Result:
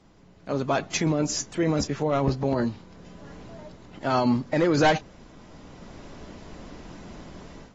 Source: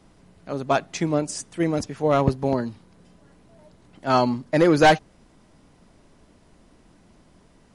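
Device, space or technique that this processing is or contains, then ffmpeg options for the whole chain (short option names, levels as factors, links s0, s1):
low-bitrate web radio: -filter_complex "[0:a]asettb=1/sr,asplit=3[s0][s1][s2];[s0]atrim=end=1.054[s3];[s1]atrim=start=1.05:end=2.65,asetpts=PTS-STARTPTS,afade=t=in:d=0.004:c=qsin,afade=t=out:st=1.596:d=0.004:c=qsin,asplit=2[s4][s5];[s5]adelay=14,volume=0.299[s6];[s4][s6]amix=inputs=2:normalize=0,atrim=end_sample=70560[s7];[s2]atrim=start=2.646[s8];[s3][s7]acrossfade=d=0.004:c1=hsin:c2=qsin[s9];[s9][s8]acrossfade=d=0.004:c1=qsin:c2=hsin,dynaudnorm=f=380:g=3:m=5.31,alimiter=limit=0.237:level=0:latency=1:release=22,volume=0.75" -ar 32000 -c:a aac -b:a 24k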